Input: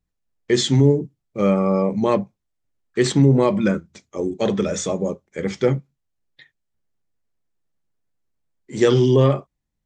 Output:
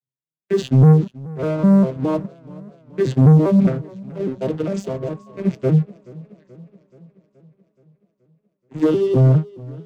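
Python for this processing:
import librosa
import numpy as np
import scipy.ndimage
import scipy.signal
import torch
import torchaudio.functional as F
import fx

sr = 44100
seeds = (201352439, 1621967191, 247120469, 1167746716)

y = fx.vocoder_arp(x, sr, chord='minor triad', root=48, every_ms=203)
y = fx.dynamic_eq(y, sr, hz=170.0, q=1.8, threshold_db=-28.0, ratio=4.0, max_db=4)
y = fx.leveller(y, sr, passes=2)
y = fx.dmg_tone(y, sr, hz=1100.0, level_db=-44.0, at=(4.88, 5.4), fade=0.02)
y = fx.echo_warbled(y, sr, ms=427, feedback_pct=60, rate_hz=2.8, cents=83, wet_db=-21.5)
y = F.gain(torch.from_numpy(y), -4.0).numpy()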